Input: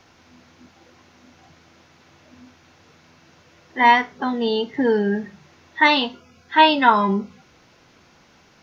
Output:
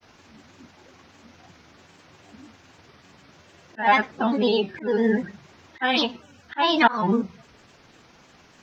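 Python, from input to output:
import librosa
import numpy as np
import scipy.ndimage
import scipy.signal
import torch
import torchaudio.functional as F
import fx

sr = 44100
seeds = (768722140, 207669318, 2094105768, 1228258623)

y = fx.auto_swell(x, sr, attack_ms=263.0)
y = fx.granulator(y, sr, seeds[0], grain_ms=100.0, per_s=20.0, spray_ms=14.0, spread_st=3)
y = y * 10.0 ** (2.0 / 20.0)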